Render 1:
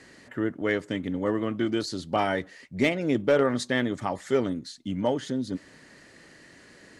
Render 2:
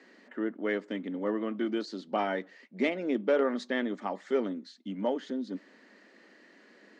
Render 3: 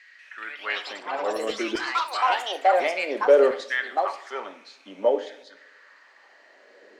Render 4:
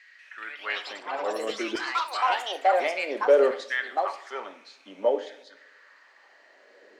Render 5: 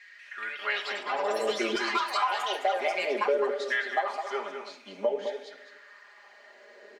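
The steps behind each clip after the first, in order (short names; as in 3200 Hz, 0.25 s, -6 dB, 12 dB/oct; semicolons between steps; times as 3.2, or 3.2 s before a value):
elliptic high-pass 200 Hz, stop band 40 dB; air absorption 140 m; gain -3.5 dB
LFO high-pass saw down 0.57 Hz 410–2100 Hz; two-slope reverb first 0.57 s, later 1.7 s, from -18 dB, DRR 8 dB; echoes that change speed 0.19 s, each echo +5 st, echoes 3; gain +2.5 dB
low shelf 100 Hz -10.5 dB; gain -2 dB
comb 4.9 ms, depth 87%; compressor 6:1, threshold -24 dBFS, peak gain reduction 13.5 dB; outdoor echo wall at 36 m, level -7 dB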